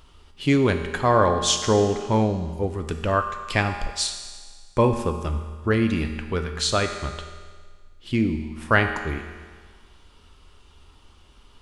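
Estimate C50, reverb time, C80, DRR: 7.5 dB, 1.6 s, 9.0 dB, 5.5 dB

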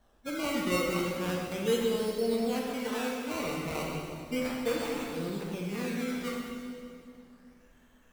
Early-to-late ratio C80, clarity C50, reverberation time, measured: 2.0 dB, 0.0 dB, 2.4 s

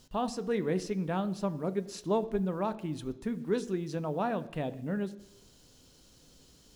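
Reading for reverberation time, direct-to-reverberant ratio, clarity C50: 0.85 s, 11.0 dB, 16.5 dB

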